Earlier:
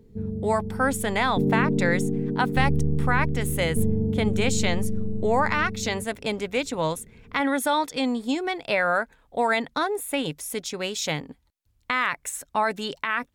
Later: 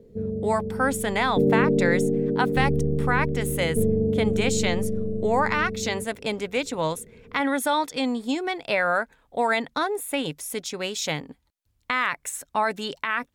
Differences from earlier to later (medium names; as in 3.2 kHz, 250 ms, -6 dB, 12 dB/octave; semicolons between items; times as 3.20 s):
background: add resonant low-pass 560 Hz, resonance Q 4.6; master: add bass shelf 91 Hz -5 dB